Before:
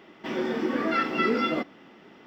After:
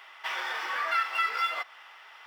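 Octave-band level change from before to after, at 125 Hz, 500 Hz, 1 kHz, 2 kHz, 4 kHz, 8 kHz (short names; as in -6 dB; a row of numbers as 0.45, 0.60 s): under -40 dB, -16.5 dB, 0.0 dB, +1.5 dB, +1.5 dB, n/a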